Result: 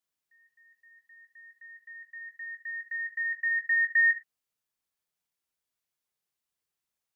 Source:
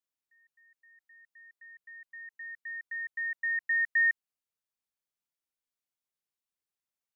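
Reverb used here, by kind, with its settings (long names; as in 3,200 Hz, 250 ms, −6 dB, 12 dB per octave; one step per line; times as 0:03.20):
reverb whose tail is shaped and stops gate 130 ms falling, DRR 7 dB
level +3.5 dB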